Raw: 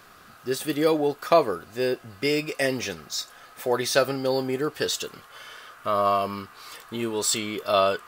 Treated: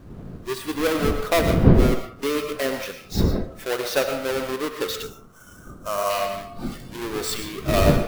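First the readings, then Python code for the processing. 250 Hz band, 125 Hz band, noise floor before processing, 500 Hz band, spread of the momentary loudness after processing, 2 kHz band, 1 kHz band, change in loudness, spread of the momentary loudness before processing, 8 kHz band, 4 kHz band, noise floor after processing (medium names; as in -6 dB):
+5.5 dB, +14.0 dB, -51 dBFS, +0.5 dB, 15 LU, +1.5 dB, -1.5 dB, +1.5 dB, 16 LU, -2.5 dB, -0.5 dB, -46 dBFS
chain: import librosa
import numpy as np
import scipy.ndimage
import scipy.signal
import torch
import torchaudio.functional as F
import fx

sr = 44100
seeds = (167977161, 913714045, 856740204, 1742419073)

p1 = fx.halfwave_hold(x, sr)
p2 = fx.dmg_wind(p1, sr, seeds[0], corner_hz=230.0, level_db=-20.0)
p3 = fx.dynamic_eq(p2, sr, hz=7300.0, q=1.2, threshold_db=-40.0, ratio=4.0, max_db=-4)
p4 = fx.rev_freeverb(p3, sr, rt60_s=0.57, hf_ratio=0.6, predelay_ms=70, drr_db=7.0)
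p5 = fx.spec_box(p4, sr, start_s=5.03, length_s=1.07, low_hz=1600.0, high_hz=5200.0, gain_db=-8)
p6 = fx.peak_eq(p5, sr, hz=820.0, db=-2.5, octaves=0.44)
p7 = p6 + fx.echo_banded(p6, sr, ms=72, feedback_pct=72, hz=790.0, wet_db=-10, dry=0)
p8 = fx.noise_reduce_blind(p7, sr, reduce_db=10)
y = p8 * 10.0 ** (-5.0 / 20.0)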